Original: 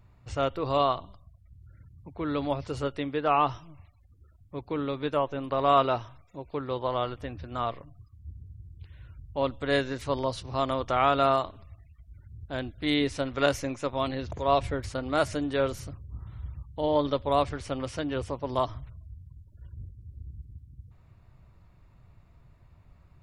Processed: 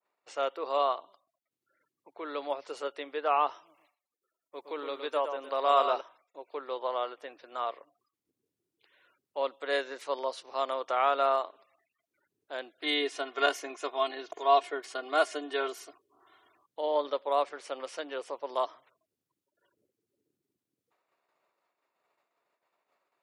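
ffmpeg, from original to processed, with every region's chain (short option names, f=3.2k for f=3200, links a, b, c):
-filter_complex "[0:a]asettb=1/sr,asplit=3[a][b][c];[a]atrim=end=3.664[d];[b]atrim=start=3.66:end=6.01,asetpts=PTS-STARTPTS,afade=t=in:d=0.004:c=qsin,afade=t=out:st=2.346:d=0.004:c=qsin,bass=f=250:g=-1,treble=f=4k:g=8,aecho=1:1:115:0.398,atrim=end_sample=103635[e];[c]atrim=start=6.006[f];[d][e]acrossfade=d=0.004:c1=hsin:c2=qsin[g];[g][f]acrossfade=d=0.004:c1=qsin:c2=hsin,asettb=1/sr,asplit=3[h][i][j];[h]atrim=end=12.824[k];[i]atrim=start=12.82:end=16.66,asetpts=PTS-STARTPTS,afade=t=in:d=0.004:c=qsin,afade=t=out:st=3.836:d=0.004:c=qsin,equalizer=f=3.1k:w=6.6:g=4.5,aecho=1:1:2.8:0.86,atrim=end_sample=169344[l];[j]atrim=start=16.656[m];[k][l]acrossfade=d=0.004:c1=hsin:c2=qsin[n];[n][m]acrossfade=d=0.004:c1=qsin:c2=hsin,agate=range=-33dB:threshold=-49dB:ratio=3:detection=peak,highpass=f=410:w=0.5412,highpass=f=410:w=1.3066,adynamicequalizer=threshold=0.00891:dfrequency=2400:dqfactor=0.7:tfrequency=2400:tqfactor=0.7:attack=5:release=100:ratio=0.375:range=3:mode=cutabove:tftype=highshelf,volume=-2.5dB"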